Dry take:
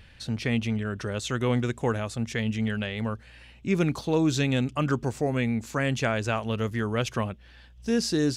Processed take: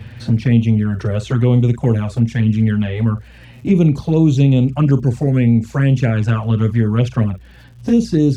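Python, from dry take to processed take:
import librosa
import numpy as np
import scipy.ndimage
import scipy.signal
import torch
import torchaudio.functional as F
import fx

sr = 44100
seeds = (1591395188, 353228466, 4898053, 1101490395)

y = scipy.signal.sosfilt(scipy.signal.butter(2, 95.0, 'highpass', fs=sr, output='sos'), x)
y = fx.tilt_eq(y, sr, slope=-2.0)
y = fx.doubler(y, sr, ms=43.0, db=-12.0)
y = fx.dmg_crackle(y, sr, seeds[0], per_s=79.0, level_db=-46.0)
y = fx.low_shelf(y, sr, hz=150.0, db=9.5)
y = fx.env_flanger(y, sr, rest_ms=9.6, full_db=-14.0)
y = fx.band_squash(y, sr, depth_pct=40)
y = F.gain(torch.from_numpy(y), 5.5).numpy()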